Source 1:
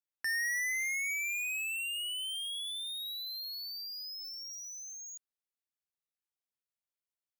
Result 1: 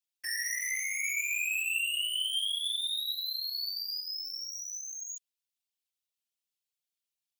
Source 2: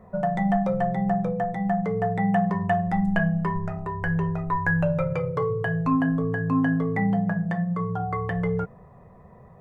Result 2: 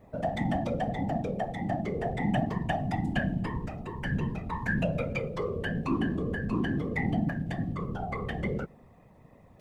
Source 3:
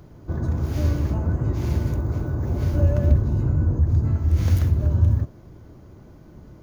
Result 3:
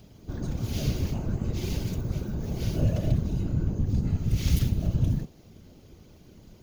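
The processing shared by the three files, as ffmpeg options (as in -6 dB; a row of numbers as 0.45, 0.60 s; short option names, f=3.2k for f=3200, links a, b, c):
-af "afftfilt=real='hypot(re,im)*cos(2*PI*random(0))':imag='hypot(re,im)*sin(2*PI*random(1))':win_size=512:overlap=0.75,highshelf=f=2.1k:t=q:w=1.5:g=10,bandreject=f=1k:w=19"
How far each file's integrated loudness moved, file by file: +3.5, -6.5, -6.5 LU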